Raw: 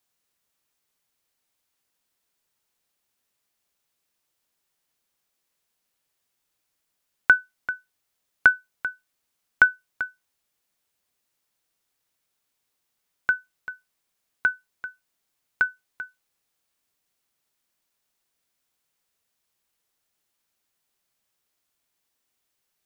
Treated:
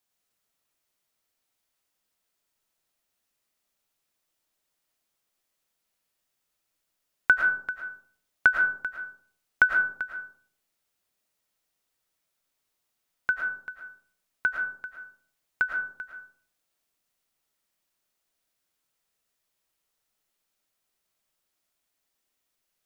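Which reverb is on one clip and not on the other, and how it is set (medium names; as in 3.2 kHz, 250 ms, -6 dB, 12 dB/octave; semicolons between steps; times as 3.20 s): algorithmic reverb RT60 0.58 s, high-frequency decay 0.35×, pre-delay 70 ms, DRR 2 dB; trim -3.5 dB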